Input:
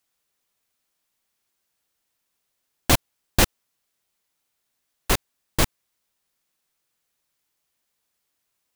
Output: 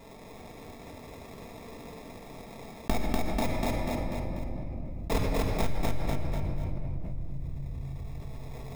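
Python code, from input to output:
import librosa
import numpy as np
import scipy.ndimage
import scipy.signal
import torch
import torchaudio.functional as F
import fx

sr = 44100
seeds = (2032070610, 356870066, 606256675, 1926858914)

y = np.minimum(x, 2.0 * 10.0 ** (-16.0 / 20.0) - x)
y = fx.cheby1_bandpass(y, sr, low_hz=620.0, high_hz=2000.0, order=3, at=(2.9, 5.11))
y = fx.chorus_voices(y, sr, voices=6, hz=0.82, base_ms=21, depth_ms=1.2, mix_pct=50)
y = fx.sample_hold(y, sr, seeds[0], rate_hz=1500.0, jitter_pct=0)
y = fx.echo_feedback(y, sr, ms=244, feedback_pct=32, wet_db=-3.0)
y = fx.room_shoebox(y, sr, seeds[1], volume_m3=3500.0, walls='mixed', distance_m=1.6)
y = fx.env_flatten(y, sr, amount_pct=70)
y = F.gain(torch.from_numpy(y), -9.0).numpy()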